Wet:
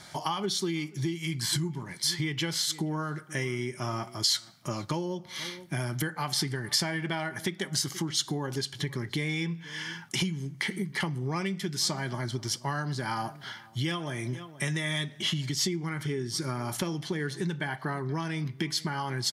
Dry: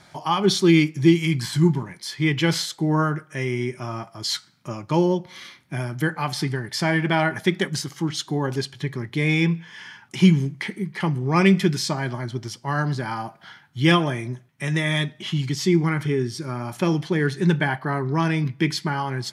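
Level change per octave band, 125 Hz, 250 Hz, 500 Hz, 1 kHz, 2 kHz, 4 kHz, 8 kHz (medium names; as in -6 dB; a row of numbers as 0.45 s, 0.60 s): -9.5 dB, -12.0 dB, -11.0 dB, -8.5 dB, -8.0 dB, -2.0 dB, +1.5 dB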